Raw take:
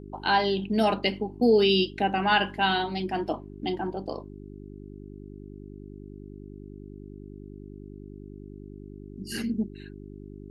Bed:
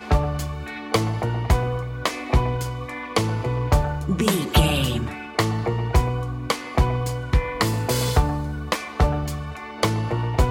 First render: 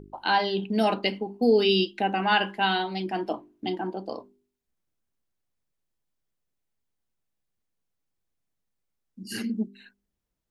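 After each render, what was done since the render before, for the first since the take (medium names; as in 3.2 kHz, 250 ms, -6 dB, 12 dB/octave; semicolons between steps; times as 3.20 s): de-hum 50 Hz, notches 8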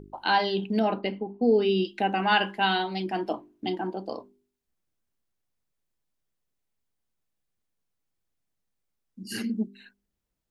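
0.79–1.85 s: tape spacing loss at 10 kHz 30 dB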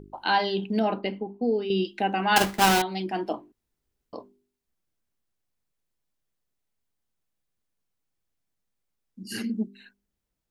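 1.25–1.70 s: fade out, to -8.5 dB; 2.36–2.82 s: square wave that keeps the level; 3.52–4.13 s: room tone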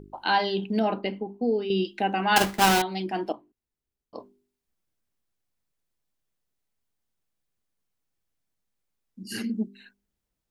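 3.32–4.15 s: gain -9 dB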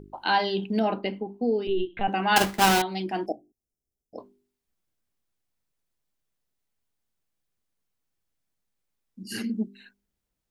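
1.67–2.08 s: LPC vocoder at 8 kHz pitch kept; 3.26–4.18 s: brick-wall FIR band-stop 820–4900 Hz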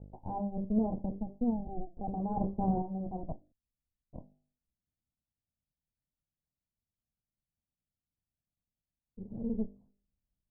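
comb filter that takes the minimum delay 1.2 ms; Gaussian low-pass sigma 16 samples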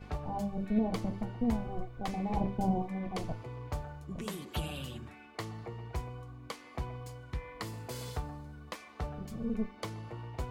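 add bed -19 dB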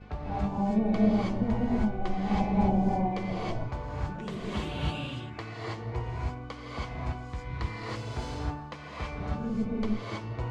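distance through air 120 m; gated-style reverb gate 350 ms rising, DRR -6.5 dB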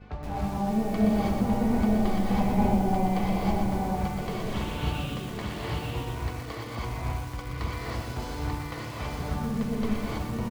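delay 889 ms -3 dB; bit-crushed delay 122 ms, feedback 55%, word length 7-bit, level -5.5 dB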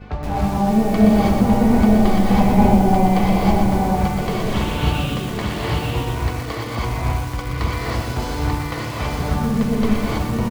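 trim +10 dB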